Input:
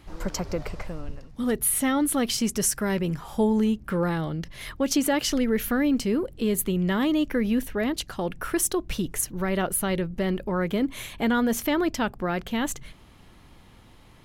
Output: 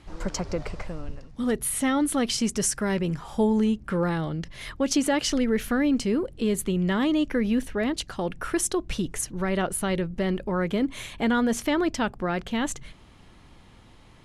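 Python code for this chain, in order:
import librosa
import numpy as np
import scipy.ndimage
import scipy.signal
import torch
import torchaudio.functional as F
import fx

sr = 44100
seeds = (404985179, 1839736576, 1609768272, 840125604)

y = scipy.signal.sosfilt(scipy.signal.butter(4, 10000.0, 'lowpass', fs=sr, output='sos'), x)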